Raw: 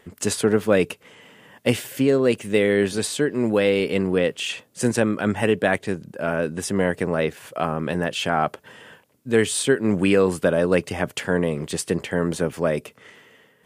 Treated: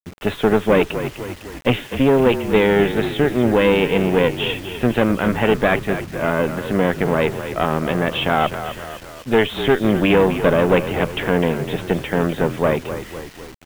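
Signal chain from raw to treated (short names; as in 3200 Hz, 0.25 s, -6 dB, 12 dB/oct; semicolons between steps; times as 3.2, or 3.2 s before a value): tube stage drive 16 dB, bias 0.7; downsampling 8000 Hz; on a send: frequency-shifting echo 0.252 s, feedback 55%, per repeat -40 Hz, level -10.5 dB; on the sum: bit-crush 8-bit; gain +8 dB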